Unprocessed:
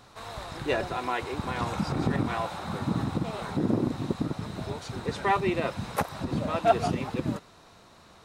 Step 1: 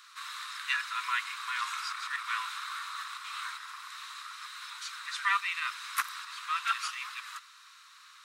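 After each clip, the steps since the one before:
Butterworth high-pass 1,100 Hz 72 dB per octave
level +3.5 dB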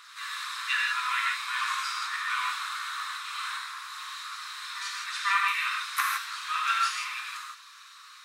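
backwards echo 499 ms −15 dB
phase shifter 1 Hz, delay 1.3 ms, feedback 21%
reverb whose tail is shaped and stops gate 190 ms flat, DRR −2.5 dB

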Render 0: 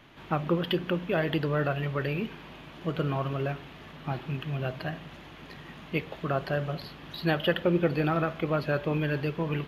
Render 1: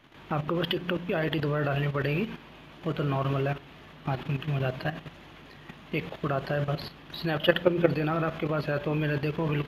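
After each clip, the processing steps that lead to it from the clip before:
hum removal 57.86 Hz, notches 4
output level in coarse steps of 11 dB
level +6 dB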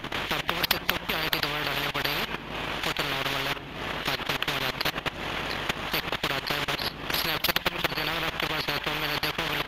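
transient designer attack +7 dB, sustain −11 dB
every bin compressed towards the loudest bin 10 to 1
level −1 dB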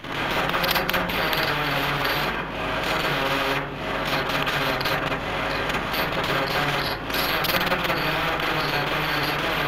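convolution reverb RT60 0.50 s, pre-delay 37 ms, DRR −6 dB
level −1 dB

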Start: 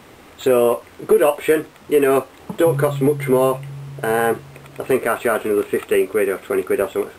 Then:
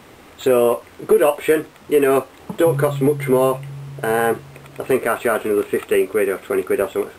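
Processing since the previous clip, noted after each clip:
no processing that can be heard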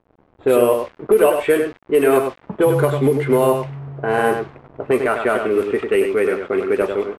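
slap from a distant wall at 17 metres, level −6 dB
centre clipping without the shift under −36.5 dBFS
low-pass that shuts in the quiet parts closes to 660 Hz, open at −10.5 dBFS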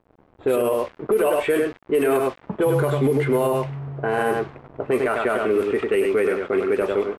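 brickwall limiter −12 dBFS, peak gain reduction 9.5 dB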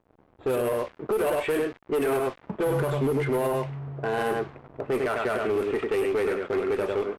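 asymmetric clip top −19 dBFS, bottom −15 dBFS
level −4 dB

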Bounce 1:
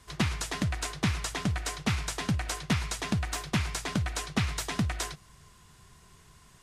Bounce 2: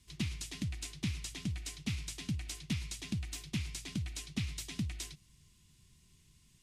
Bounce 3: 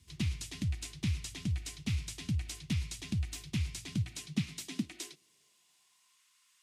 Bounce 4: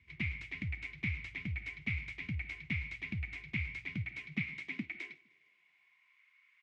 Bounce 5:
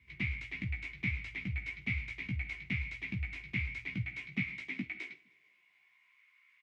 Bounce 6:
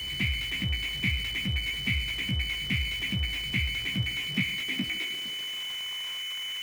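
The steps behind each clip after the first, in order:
flat-topped bell 860 Hz −15 dB 2.3 octaves; level −7.5 dB
high-pass filter sweep 75 Hz → 1,200 Hz, 0:03.69–0:06.23
low-pass with resonance 2,200 Hz, resonance Q 14; repeating echo 153 ms, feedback 49%, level −24 dB; level −6 dB
double-tracking delay 16 ms −4 dB
converter with a step at zero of −41.5 dBFS; steady tone 3,000 Hz −38 dBFS; level +5 dB

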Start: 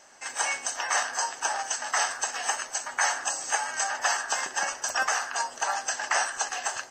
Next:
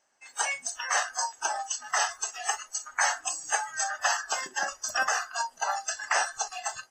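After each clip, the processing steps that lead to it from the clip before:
noise reduction from a noise print of the clip's start 18 dB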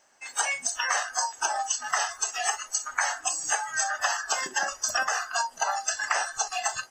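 downward compressor 6 to 1, threshold −33 dBFS, peak gain reduction 12 dB
level +9 dB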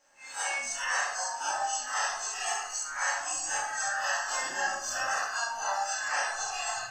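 spectrum smeared in time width 88 ms
rectangular room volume 130 cubic metres, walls mixed, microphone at 2.2 metres
level −8 dB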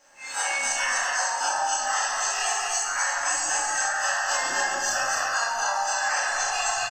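downward compressor, threshold −32 dBFS, peak gain reduction 7.5 dB
loudspeakers that aren't time-aligned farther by 48 metres −11 dB, 87 metres −4 dB
level +8.5 dB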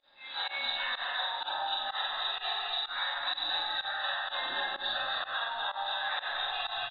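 hearing-aid frequency compression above 3,100 Hz 4 to 1
fake sidechain pumping 126 BPM, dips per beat 1, −21 dB, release 99 ms
level −8.5 dB

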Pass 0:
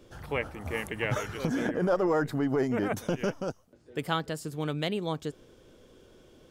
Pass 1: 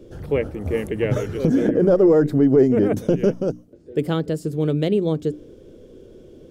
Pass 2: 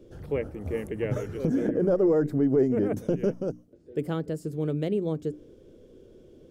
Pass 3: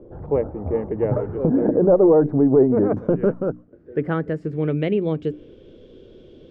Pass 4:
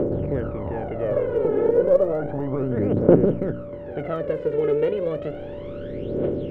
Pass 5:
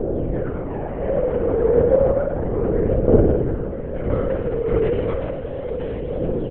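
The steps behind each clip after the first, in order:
low shelf with overshoot 640 Hz +11 dB, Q 1.5; mains-hum notches 60/120/180/240/300 Hz
dynamic equaliser 3,700 Hz, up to −6 dB, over −49 dBFS, Q 1.6; level −7.5 dB
low-pass filter sweep 900 Hz → 3,500 Hz, 0:02.42–0:05.84; level +6 dB
compressor on every frequency bin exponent 0.4; phase shifter 0.32 Hz, delay 2.4 ms, feedback 75%; steady tone 580 Hz −22 dBFS; level −12.5 dB
on a send: single-tap delay 981 ms −9 dB; on the sum: spring reverb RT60 1.1 s, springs 53 ms, DRR −0.5 dB; linear-prediction vocoder at 8 kHz whisper; level −2 dB

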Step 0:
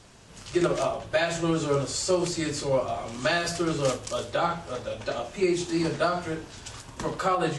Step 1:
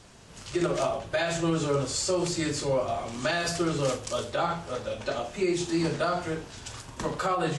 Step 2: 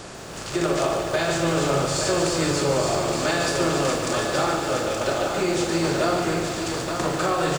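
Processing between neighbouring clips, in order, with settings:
brickwall limiter −17.5 dBFS, peak gain reduction 5 dB; double-tracking delay 42 ms −13 dB
compressor on every frequency bin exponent 0.6; single-tap delay 872 ms −6 dB; feedback echo at a low word length 146 ms, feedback 80%, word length 7 bits, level −8 dB

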